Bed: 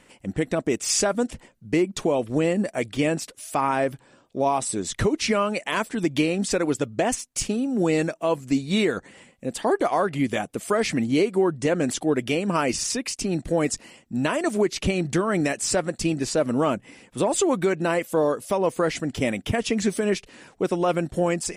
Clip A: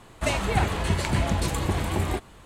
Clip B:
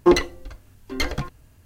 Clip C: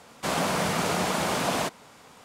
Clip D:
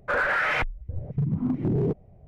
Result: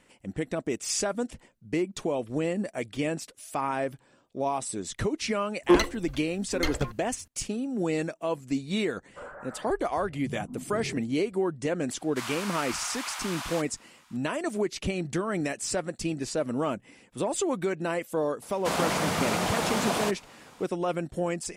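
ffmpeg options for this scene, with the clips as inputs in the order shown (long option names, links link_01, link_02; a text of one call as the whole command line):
ffmpeg -i bed.wav -i cue0.wav -i cue1.wav -i cue2.wav -i cue3.wav -filter_complex "[3:a]asplit=2[link_01][link_02];[0:a]volume=-6.5dB[link_03];[4:a]lowpass=frequency=1200:width=0.5412,lowpass=frequency=1200:width=1.3066[link_04];[link_01]highpass=frequency=1000:width=0.5412,highpass=frequency=1000:width=1.3066[link_05];[2:a]atrim=end=1.65,asetpts=PTS-STARTPTS,volume=-4.5dB,afade=type=in:duration=0.004:curve=hsin,afade=type=out:start_time=1.646:duration=0.004:curve=hsin,adelay=5630[link_06];[link_04]atrim=end=2.27,asetpts=PTS-STARTPTS,volume=-14.5dB,afade=type=in:duration=0.004:curve=hsin,afade=type=out:start_time=2.266:duration=0.004:curve=hsin,adelay=9080[link_07];[link_05]atrim=end=2.24,asetpts=PTS-STARTPTS,volume=-6dB,afade=type=in:duration=0.004:curve=hsin,afade=type=out:start_time=2.236:duration=0.004:curve=hsin,adelay=11930[link_08];[link_02]atrim=end=2.24,asetpts=PTS-STARTPTS,volume=-1.5dB,afade=type=in:duration=0.004:curve=hsin,afade=type=out:start_time=2.236:duration=0.004:curve=hsin,adelay=18420[link_09];[link_03][link_06][link_07][link_08][link_09]amix=inputs=5:normalize=0" out.wav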